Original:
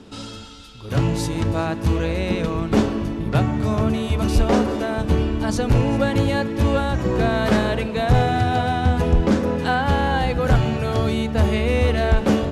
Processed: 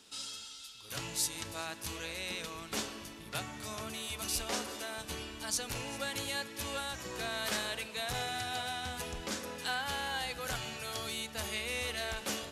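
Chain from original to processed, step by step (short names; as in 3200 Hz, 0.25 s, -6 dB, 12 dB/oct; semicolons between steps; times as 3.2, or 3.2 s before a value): pre-emphasis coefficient 0.97; gain +1.5 dB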